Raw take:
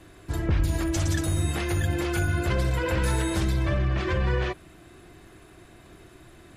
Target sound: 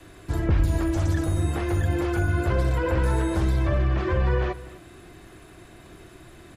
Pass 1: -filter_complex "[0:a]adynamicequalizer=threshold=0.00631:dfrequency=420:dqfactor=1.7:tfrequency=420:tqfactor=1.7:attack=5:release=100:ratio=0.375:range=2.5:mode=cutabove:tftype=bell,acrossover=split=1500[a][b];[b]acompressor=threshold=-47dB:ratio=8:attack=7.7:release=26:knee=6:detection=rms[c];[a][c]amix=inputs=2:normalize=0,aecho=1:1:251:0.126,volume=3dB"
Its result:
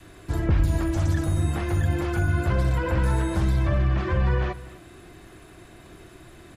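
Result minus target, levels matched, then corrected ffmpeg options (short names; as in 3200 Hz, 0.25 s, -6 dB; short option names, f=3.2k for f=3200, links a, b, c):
500 Hz band -3.0 dB
-filter_complex "[0:a]adynamicequalizer=threshold=0.00631:dfrequency=170:dqfactor=1.7:tfrequency=170:tqfactor=1.7:attack=5:release=100:ratio=0.375:range=2.5:mode=cutabove:tftype=bell,acrossover=split=1500[a][b];[b]acompressor=threshold=-47dB:ratio=8:attack=7.7:release=26:knee=6:detection=rms[c];[a][c]amix=inputs=2:normalize=0,aecho=1:1:251:0.126,volume=3dB"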